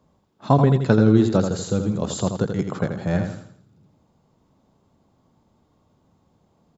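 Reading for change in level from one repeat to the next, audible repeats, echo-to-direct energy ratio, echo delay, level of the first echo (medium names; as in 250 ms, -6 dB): -8.0 dB, 4, -6.5 dB, 83 ms, -7.0 dB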